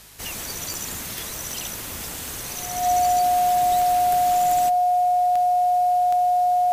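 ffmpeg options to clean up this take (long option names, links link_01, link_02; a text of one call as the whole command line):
ffmpeg -i in.wav -af "adeclick=threshold=4,bandreject=frequency=52.5:width_type=h:width=4,bandreject=frequency=105:width_type=h:width=4,bandreject=frequency=157.5:width_type=h:width=4,bandreject=frequency=720:width=30,agate=range=-21dB:threshold=-25dB" out.wav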